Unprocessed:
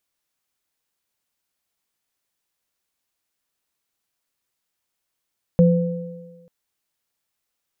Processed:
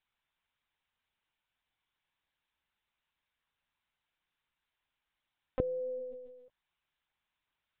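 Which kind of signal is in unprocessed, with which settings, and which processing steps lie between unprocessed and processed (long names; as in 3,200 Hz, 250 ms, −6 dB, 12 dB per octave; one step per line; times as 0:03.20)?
inharmonic partials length 0.89 s, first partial 173 Hz, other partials 507 Hz, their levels −5.5 dB, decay 1.25 s, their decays 1.46 s, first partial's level −9.5 dB
high-pass filter 590 Hz 12 dB per octave
downward compressor 6 to 1, threshold −33 dBFS
linear-prediction vocoder at 8 kHz pitch kept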